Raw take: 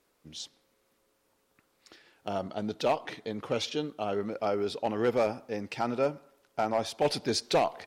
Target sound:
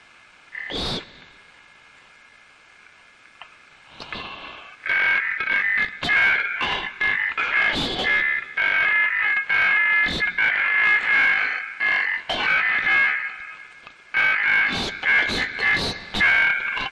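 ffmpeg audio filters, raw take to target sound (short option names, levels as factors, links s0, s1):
-filter_complex "[0:a]asplit=2[s0][s1];[s1]alimiter=level_in=1.26:limit=0.0631:level=0:latency=1:release=217,volume=0.794,volume=1[s2];[s0][s2]amix=inputs=2:normalize=0,asplit=2[s3][s4];[s4]highpass=f=720:p=1,volume=17.8,asoftclip=type=tanh:threshold=0.2[s5];[s3][s5]amix=inputs=2:normalize=0,lowpass=f=2400:p=1,volume=0.501,asetrate=20506,aresample=44100,aeval=exprs='val(0)*sin(2*PI*1900*n/s)':c=same,volume=1.68"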